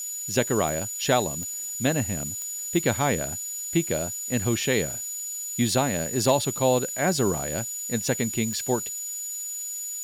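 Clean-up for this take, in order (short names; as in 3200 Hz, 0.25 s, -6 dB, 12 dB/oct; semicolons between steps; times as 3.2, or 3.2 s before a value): clip repair -9 dBFS; de-click; notch 6900 Hz, Q 30; noise print and reduce 30 dB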